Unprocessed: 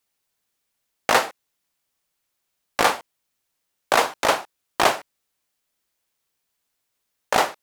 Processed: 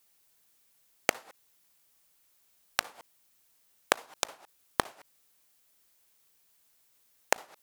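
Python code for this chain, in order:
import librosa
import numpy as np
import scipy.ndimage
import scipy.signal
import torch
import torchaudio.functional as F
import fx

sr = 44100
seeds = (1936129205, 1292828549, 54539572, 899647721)

y = fx.high_shelf(x, sr, hz=7700.0, db=7.5)
y = fx.gate_flip(y, sr, shuts_db=-11.0, range_db=-35)
y = y * 10.0 ** (4.0 / 20.0)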